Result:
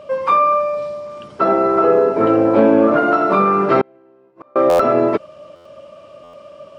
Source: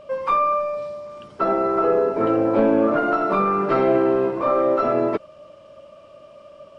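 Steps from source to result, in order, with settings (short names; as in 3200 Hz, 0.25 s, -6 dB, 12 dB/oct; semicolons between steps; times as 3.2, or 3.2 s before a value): HPF 73 Hz; 3.81–4.56 flipped gate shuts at -18 dBFS, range -37 dB; stuck buffer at 4.69/5.55/6.23, samples 512; gain +5.5 dB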